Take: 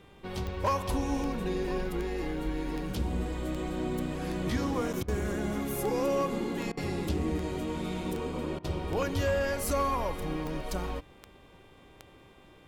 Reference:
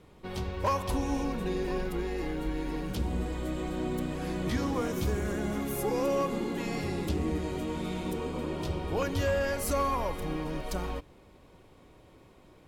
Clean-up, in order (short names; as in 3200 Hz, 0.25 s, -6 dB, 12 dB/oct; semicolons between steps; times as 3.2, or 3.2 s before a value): de-click; de-hum 394.9 Hz, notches 9; interpolate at 4.93, 7 ms; interpolate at 5.03/6.72/8.59, 51 ms